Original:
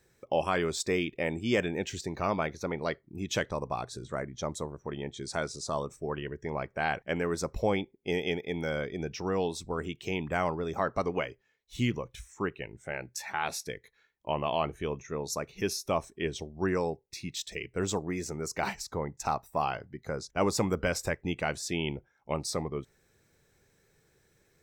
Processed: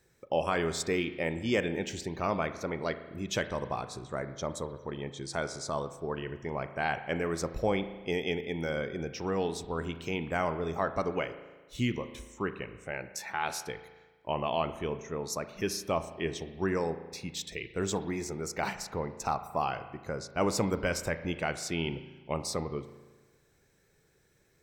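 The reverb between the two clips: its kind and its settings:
spring reverb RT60 1.3 s, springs 36 ms, chirp 30 ms, DRR 10.5 dB
level −1 dB

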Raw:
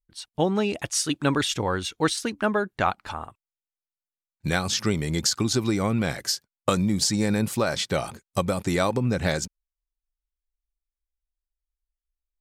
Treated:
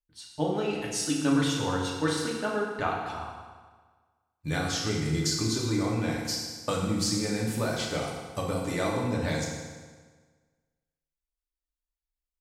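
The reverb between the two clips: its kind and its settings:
feedback delay network reverb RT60 1.5 s, low-frequency decay 1×, high-frequency decay 0.85×, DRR −3.5 dB
level −9.5 dB

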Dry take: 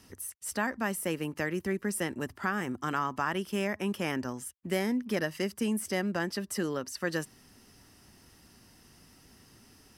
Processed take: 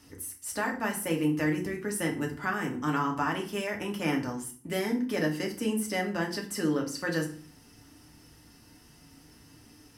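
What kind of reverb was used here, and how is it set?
feedback delay network reverb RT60 0.44 s, low-frequency decay 1.55×, high-frequency decay 0.8×, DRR 0 dB
level −1.5 dB

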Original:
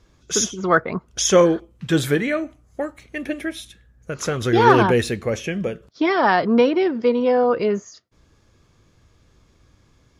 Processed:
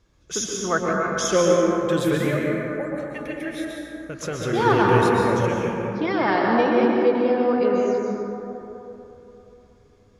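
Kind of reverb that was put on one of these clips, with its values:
dense smooth reverb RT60 3.4 s, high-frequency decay 0.3×, pre-delay 110 ms, DRR −2.5 dB
level −6.5 dB

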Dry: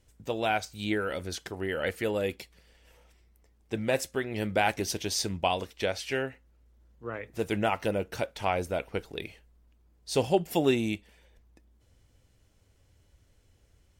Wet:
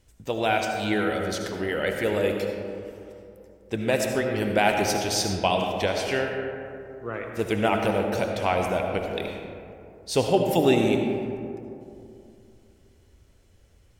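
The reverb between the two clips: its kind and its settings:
comb and all-pass reverb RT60 2.7 s, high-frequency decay 0.35×, pre-delay 35 ms, DRR 2.5 dB
level +3.5 dB

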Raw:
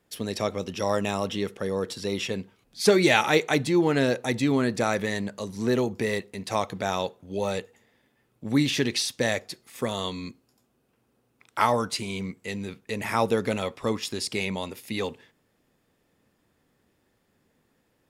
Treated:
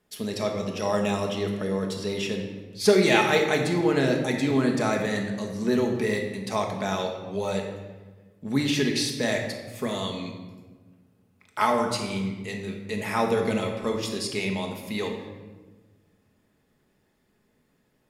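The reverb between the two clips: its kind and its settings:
rectangular room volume 1,000 cubic metres, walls mixed, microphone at 1.4 metres
level −2.5 dB

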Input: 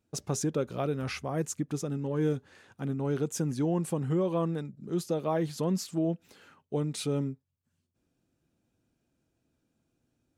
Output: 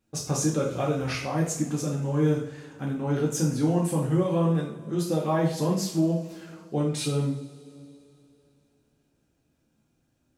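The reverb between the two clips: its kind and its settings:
coupled-rooms reverb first 0.5 s, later 3.1 s, from −22 dB, DRR −4.5 dB

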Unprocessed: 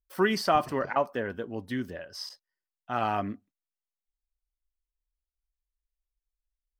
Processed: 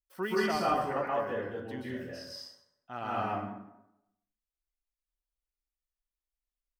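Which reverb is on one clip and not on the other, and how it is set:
dense smooth reverb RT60 0.85 s, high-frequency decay 0.65×, pre-delay 115 ms, DRR −6 dB
level −10.5 dB

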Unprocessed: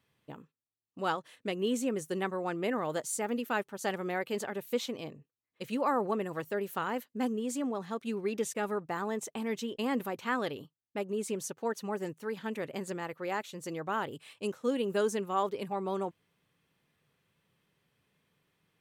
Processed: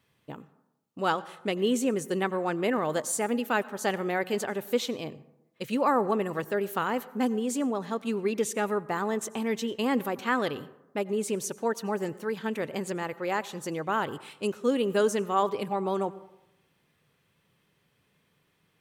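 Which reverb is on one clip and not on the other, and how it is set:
dense smooth reverb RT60 0.93 s, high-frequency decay 0.4×, pre-delay 75 ms, DRR 18.5 dB
level +5 dB

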